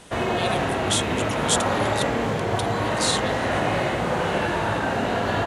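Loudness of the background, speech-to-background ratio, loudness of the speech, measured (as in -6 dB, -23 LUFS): -24.0 LUFS, -4.5 dB, -28.5 LUFS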